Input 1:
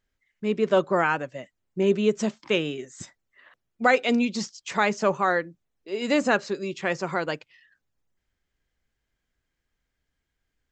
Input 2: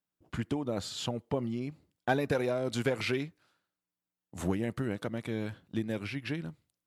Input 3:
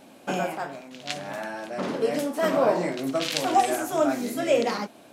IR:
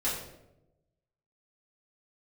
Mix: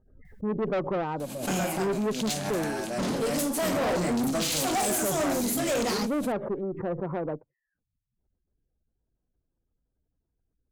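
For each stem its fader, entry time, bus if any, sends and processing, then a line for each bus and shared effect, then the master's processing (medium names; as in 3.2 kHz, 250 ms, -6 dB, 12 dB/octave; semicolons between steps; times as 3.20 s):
+2.5 dB, 0.00 s, no send, spectral gate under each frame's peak -25 dB strong; Bessel low-pass 660 Hz, order 8
-19.0 dB, 0.25 s, no send, auto duck -12 dB, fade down 0.55 s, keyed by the first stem
+2.0 dB, 1.20 s, no send, tone controls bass +9 dB, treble +13 dB; band-stop 5.5 kHz, Q 22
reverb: none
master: valve stage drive 24 dB, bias 0.3; swell ahead of each attack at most 85 dB/s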